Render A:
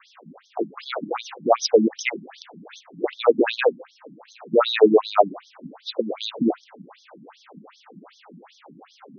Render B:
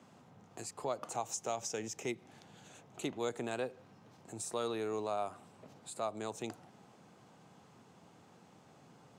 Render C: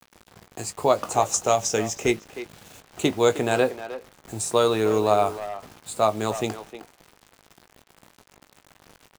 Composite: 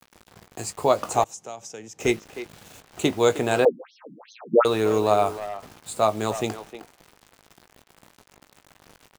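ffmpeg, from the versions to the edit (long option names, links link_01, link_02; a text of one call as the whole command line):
ffmpeg -i take0.wav -i take1.wav -i take2.wav -filter_complex "[2:a]asplit=3[link_01][link_02][link_03];[link_01]atrim=end=1.242[link_04];[1:a]atrim=start=1.238:end=2.002[link_05];[link_02]atrim=start=1.998:end=3.652[link_06];[0:a]atrim=start=3.648:end=4.652[link_07];[link_03]atrim=start=4.648[link_08];[link_04][link_05]acrossfade=duration=0.004:curve1=hsin:curve2=hsin[link_09];[link_09][link_06]acrossfade=duration=0.004:curve1=hsin:curve2=hsin[link_10];[link_10][link_07]acrossfade=duration=0.004:curve1=hsin:curve2=hsin[link_11];[link_11][link_08]acrossfade=duration=0.004:curve1=hsin:curve2=hsin" out.wav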